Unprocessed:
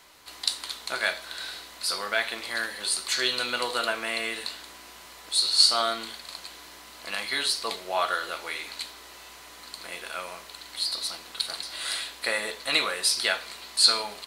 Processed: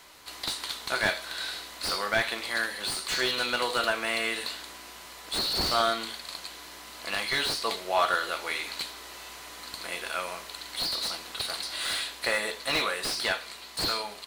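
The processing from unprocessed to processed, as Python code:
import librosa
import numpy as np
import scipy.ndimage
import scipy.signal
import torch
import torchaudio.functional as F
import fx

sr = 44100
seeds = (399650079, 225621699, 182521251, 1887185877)

y = fx.rider(x, sr, range_db=3, speed_s=2.0)
y = fx.slew_limit(y, sr, full_power_hz=180.0)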